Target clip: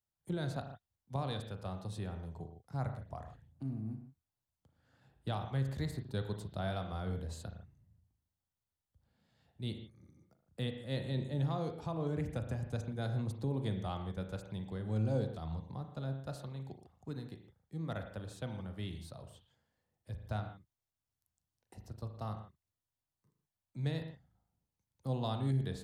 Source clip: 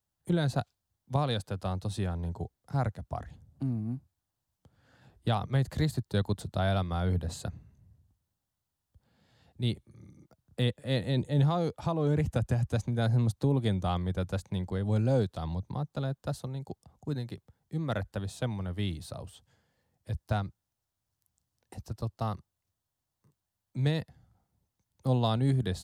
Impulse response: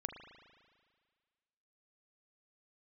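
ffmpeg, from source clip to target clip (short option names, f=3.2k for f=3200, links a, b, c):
-filter_complex "[0:a]asettb=1/sr,asplit=3[a][b][c];[a]atrim=end=16.294[d];[b]atrim=start=16.29:end=17.12,asetpts=PTS-STARTPTS,afade=t=in:d=0.004:c=qsin,afade=t=out:st=0.826:d=0.004:c=qsin,equalizer=f=2.2k:w=0.75:g=6.5[e];[c]atrim=start=17.116[f];[d][e]acrossfade=d=0.004:c1=hsin:c2=qsin[g];[g][f]acrossfade=d=0.004:c1=qsin:c2=hsin[h];[1:a]atrim=start_sample=2205,afade=t=out:st=0.22:d=0.01,atrim=end_sample=10143[i];[h][i]afir=irnorm=-1:irlink=0,volume=-6.5dB"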